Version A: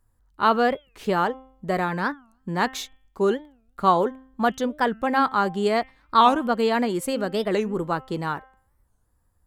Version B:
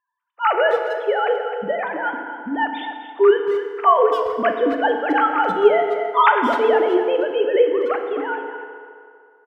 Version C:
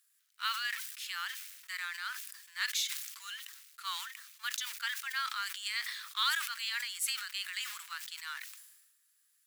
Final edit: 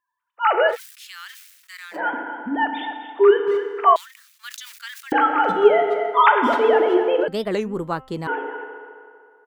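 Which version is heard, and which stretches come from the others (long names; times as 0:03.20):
B
0:00.72–0:01.96: punch in from C, crossfade 0.10 s
0:03.96–0:05.12: punch in from C
0:07.28–0:08.27: punch in from A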